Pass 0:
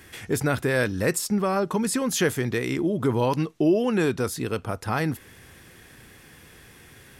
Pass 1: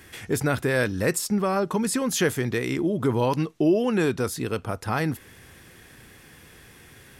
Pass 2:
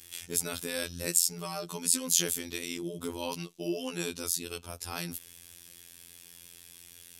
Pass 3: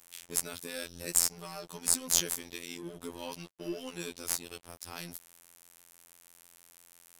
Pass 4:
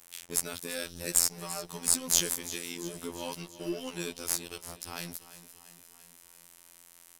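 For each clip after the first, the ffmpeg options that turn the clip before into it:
ffmpeg -i in.wav -af anull out.wav
ffmpeg -i in.wav -af "afftfilt=real='hypot(re,im)*cos(PI*b)':imag='0':win_size=2048:overlap=0.75,aexciter=amount=6:drive=3.7:freq=2600,volume=-10dB" out.wav
ffmpeg -i in.wav -af "aeval=exprs='sgn(val(0))*max(abs(val(0))-0.00473,0)':channel_layout=same,aeval=exprs='0.891*(cos(1*acos(clip(val(0)/0.891,-1,1)))-cos(1*PI/2))+0.126*(cos(2*acos(clip(val(0)/0.891,-1,1)))-cos(2*PI/2))+0.0708*(cos(4*acos(clip(val(0)/0.891,-1,1)))-cos(4*PI/2))+0.0398*(cos(7*acos(clip(val(0)/0.891,-1,1)))-cos(7*PI/2))+0.0398*(cos(8*acos(clip(val(0)/0.891,-1,1)))-cos(8*PI/2))':channel_layout=same" out.wav
ffmpeg -i in.wav -filter_complex "[0:a]asplit=2[link_01][link_02];[link_02]asoftclip=type=hard:threshold=-16.5dB,volume=-8dB[link_03];[link_01][link_03]amix=inputs=2:normalize=0,aecho=1:1:342|684|1026|1368|1710|2052:0.168|0.0974|0.0565|0.0328|0.019|0.011" out.wav

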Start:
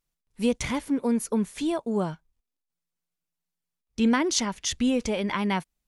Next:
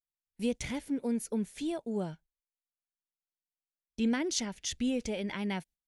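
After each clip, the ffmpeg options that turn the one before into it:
ffmpeg -i in.wav -af "equalizer=frequency=1100:width_type=o:width=0.51:gain=-11.5,agate=range=-18dB:threshold=-47dB:ratio=16:detection=peak,volume=-7dB" out.wav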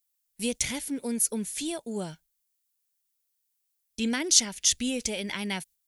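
ffmpeg -i in.wav -af "crystalizer=i=5.5:c=0" out.wav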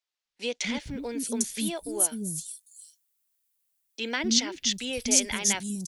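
ffmpeg -i in.wav -filter_complex "[0:a]acrossover=split=310|5500[link_01][link_02][link_03];[link_01]adelay=250[link_04];[link_03]adelay=800[link_05];[link_04][link_02][link_05]amix=inputs=3:normalize=0,volume=2.5dB" out.wav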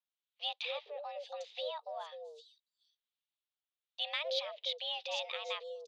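ffmpeg -i in.wav -filter_complex "[0:a]highpass=frequency=150:width_type=q:width=0.5412,highpass=frequency=150:width_type=q:width=1.307,lowpass=frequency=3500:width_type=q:width=0.5176,lowpass=frequency=3500:width_type=q:width=0.7071,lowpass=frequency=3500:width_type=q:width=1.932,afreqshift=300,acrossover=split=1400[link_01][link_02];[link_01]aeval=exprs='val(0)*(1-0.5/2+0.5/2*cos(2*PI*1.1*n/s))':channel_layout=same[link_03];[link_02]aeval=exprs='val(0)*(1-0.5/2-0.5/2*cos(2*PI*1.1*n/s))':channel_layout=same[link_04];[link_03][link_04]amix=inputs=2:normalize=0,aexciter=amount=2.1:drive=7.1:freq=3000,volume=-7.5dB" out.wav

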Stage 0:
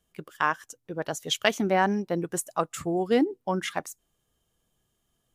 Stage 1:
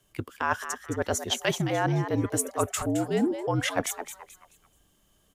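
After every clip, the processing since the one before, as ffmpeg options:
ffmpeg -i in.wav -filter_complex "[0:a]areverse,acompressor=threshold=-32dB:ratio=6,areverse,afreqshift=-58,asplit=5[link_01][link_02][link_03][link_04][link_05];[link_02]adelay=216,afreqshift=150,volume=-10dB[link_06];[link_03]adelay=432,afreqshift=300,volume=-19.6dB[link_07];[link_04]adelay=648,afreqshift=450,volume=-29.3dB[link_08];[link_05]adelay=864,afreqshift=600,volume=-38.9dB[link_09];[link_01][link_06][link_07][link_08][link_09]amix=inputs=5:normalize=0,volume=8.5dB" out.wav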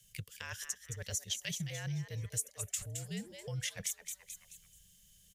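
ffmpeg -i in.wav -af "firequalizer=gain_entry='entry(190,0);entry(270,-30);entry(490,-10);entry(760,-22);entry(1300,-18);entry(1800,-3);entry(2700,1);entry(6000,8);entry(9300,6)':delay=0.05:min_phase=1,acompressor=threshold=-44dB:ratio=2" out.wav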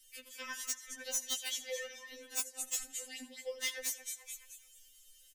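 ffmpeg -i in.wav -filter_complex "[0:a]asplit=2[link_01][link_02];[link_02]adelay=85,lowpass=frequency=4500:poles=1,volume=-14dB,asplit=2[link_03][link_04];[link_04]adelay=85,lowpass=frequency=4500:poles=1,volume=0.49,asplit=2[link_05][link_06];[link_06]adelay=85,lowpass=frequency=4500:poles=1,volume=0.49,asplit=2[link_07][link_08];[link_08]adelay=85,lowpass=frequency=4500:poles=1,volume=0.49,asplit=2[link_09][link_10];[link_10]adelay=85,lowpass=frequency=4500:poles=1,volume=0.49[link_11];[link_01][link_03][link_05][link_07][link_09][link_11]amix=inputs=6:normalize=0,aeval=exprs='(mod(17.8*val(0)+1,2)-1)/17.8':channel_layout=same,afftfilt=real='re*3.46*eq(mod(b,12),0)':imag='im*3.46*eq(mod(b,12),0)':win_size=2048:overlap=0.75,volume=4.5dB" out.wav

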